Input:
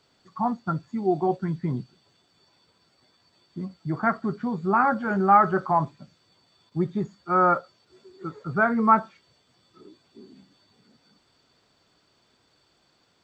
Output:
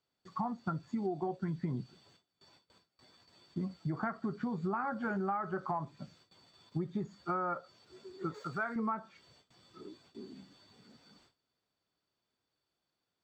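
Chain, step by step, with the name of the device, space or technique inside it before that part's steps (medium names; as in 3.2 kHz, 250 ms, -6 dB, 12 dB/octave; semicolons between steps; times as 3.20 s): gate with hold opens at -53 dBFS; serial compression, leveller first (compression 1.5:1, threshold -28 dBFS, peak gain reduction 6 dB; compression 8:1, threshold -32 dBFS, peak gain reduction 14.5 dB); 8.34–8.76 s: tilt EQ +3 dB/octave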